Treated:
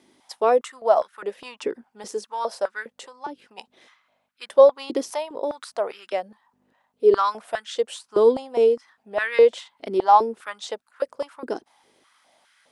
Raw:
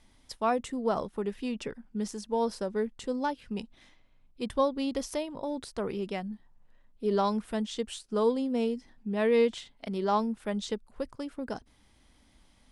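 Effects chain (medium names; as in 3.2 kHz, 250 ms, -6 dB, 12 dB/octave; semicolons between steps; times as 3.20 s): 2.92–3.58 s: compression 12:1, threshold -37 dBFS, peak gain reduction 12 dB; hum 50 Hz, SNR 27 dB; step-sequenced high-pass 4.9 Hz 350–1500 Hz; trim +3.5 dB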